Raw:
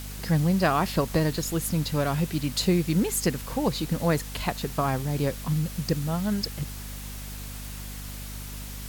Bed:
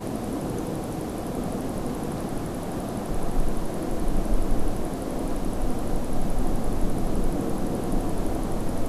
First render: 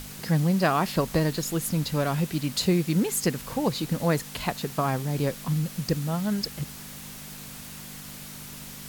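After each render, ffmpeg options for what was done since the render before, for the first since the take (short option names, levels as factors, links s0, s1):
-af "bandreject=f=50:t=h:w=6,bandreject=f=100:t=h:w=6"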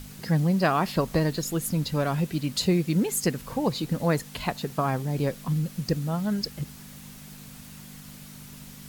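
-af "afftdn=nr=6:nf=-41"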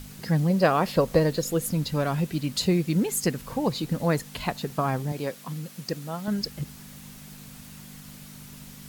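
-filter_complex "[0:a]asettb=1/sr,asplit=3[s0][s1][s2];[s0]atrim=end=0.504[s3];[s1]atrim=start=0.5:end=1.72,asetpts=PTS-STARTPTS,afade=t=in:d=0.004:c=qsin,afade=t=out:st=1.216:d=0.004:c=qsin,equalizer=f=510:t=o:w=0.39:g=9.5[s4];[s2]atrim=start=1.716[s5];[s3][s4]acrossfade=d=0.004:c1=hsin:c2=qsin[s6];[s6][s5]acrossfade=d=0.004:c1=qsin:c2=hsin,asettb=1/sr,asplit=3[s7][s8][s9];[s7]atrim=end=5.124[s10];[s8]atrim=start=5.12:end=6.28,asetpts=PTS-STARTPTS,afade=t=in:d=0.004:c=qsin,afade=t=out:st=1.156:d=0.004:c=qsin,highpass=f=390:p=1[s11];[s9]atrim=start=6.276[s12];[s10][s11]acrossfade=d=0.004:c1=hsin:c2=qsin[s13];[s13][s12]acrossfade=d=0.004:c1=qsin:c2=hsin"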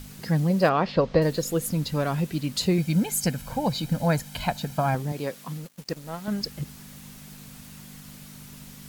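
-filter_complex "[0:a]asettb=1/sr,asplit=3[s0][s1][s2];[s0]atrim=end=0.694[s3];[s1]atrim=start=0.69:end=1.22,asetpts=PTS-STARTPTS,afade=t=in:d=0.004:c=qsin,afade=t=out:st=0.526:d=0.004:c=qsin,lowpass=f=4800:w=0.5412,lowpass=f=4800:w=1.3066[s4];[s2]atrim=start=1.216[s5];[s3][s4]acrossfade=d=0.004:c1=hsin:c2=qsin[s6];[s6][s5]acrossfade=d=0.004:c1=qsin:c2=hsin,asettb=1/sr,asplit=3[s7][s8][s9];[s7]atrim=end=2.784[s10];[s8]atrim=start=2.78:end=4.95,asetpts=PTS-STARTPTS,afade=t=in:d=0.004:c=qsin,afade=t=out:st=2.166:d=0.004:c=qsin,aecho=1:1:1.3:0.65,atrim=end_sample=95697[s11];[s9]atrim=start=4.946[s12];[s10][s11]acrossfade=d=0.004:c1=hsin:c2=qsin[s13];[s13][s12]acrossfade=d=0.004:c1=qsin:c2=hsin,asettb=1/sr,asplit=3[s14][s15][s16];[s14]atrim=end=5.574[s17];[s15]atrim=start=5.57:end=6.41,asetpts=PTS-STARTPTS,afade=t=in:d=0.004:c=qsin,afade=t=out:st=0.836:d=0.004:c=qsin,aeval=exprs='sgn(val(0))*max(abs(val(0))-0.00708,0)':c=same[s18];[s16]atrim=start=6.406[s19];[s17][s18]acrossfade=d=0.004:c1=hsin:c2=qsin[s20];[s20][s19]acrossfade=d=0.004:c1=qsin:c2=hsin"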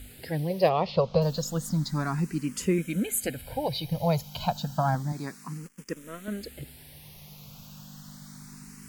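-filter_complex "[0:a]asplit=2[s0][s1];[s1]afreqshift=0.31[s2];[s0][s2]amix=inputs=2:normalize=1"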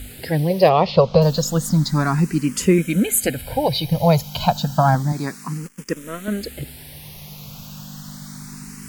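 -af "volume=3.16,alimiter=limit=0.794:level=0:latency=1"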